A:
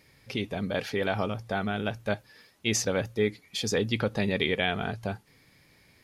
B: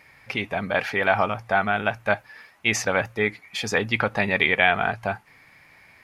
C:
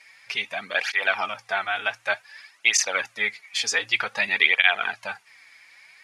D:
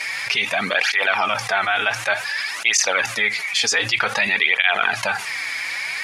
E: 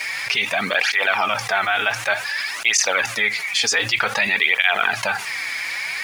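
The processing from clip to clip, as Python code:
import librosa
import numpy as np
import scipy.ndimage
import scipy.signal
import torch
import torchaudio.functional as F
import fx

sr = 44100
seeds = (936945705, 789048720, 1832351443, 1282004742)

y1 = fx.band_shelf(x, sr, hz=1300.0, db=11.5, octaves=2.3)
y2 = fx.weighting(y1, sr, curve='ITU-R 468')
y2 = fx.flanger_cancel(y2, sr, hz=0.54, depth_ms=5.7)
y2 = y2 * 10.0 ** (-1.5 / 20.0)
y3 = fx.env_flatten(y2, sr, amount_pct=70)
y3 = y3 * 10.0 ** (-1.0 / 20.0)
y4 = np.where(np.abs(y3) >= 10.0 ** (-38.5 / 20.0), y3, 0.0)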